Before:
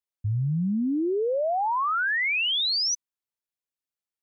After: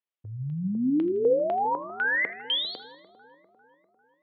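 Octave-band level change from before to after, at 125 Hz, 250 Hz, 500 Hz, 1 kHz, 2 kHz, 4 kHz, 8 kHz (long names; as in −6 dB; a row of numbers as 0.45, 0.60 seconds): −7.0 dB, 0.0 dB, +2.0 dB, −3.0 dB, −2.0 dB, −5.5 dB, can't be measured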